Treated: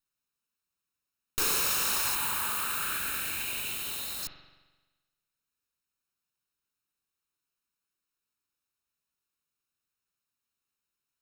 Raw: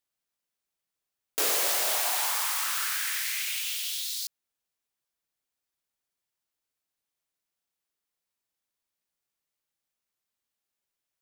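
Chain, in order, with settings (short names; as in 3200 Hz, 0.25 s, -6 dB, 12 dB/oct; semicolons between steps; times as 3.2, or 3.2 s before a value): minimum comb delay 0.75 ms; 2.15–4.23 bell 5600 Hz -10.5 dB 0.62 oct; spring tank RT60 1.2 s, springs 43 ms, chirp 30 ms, DRR 6 dB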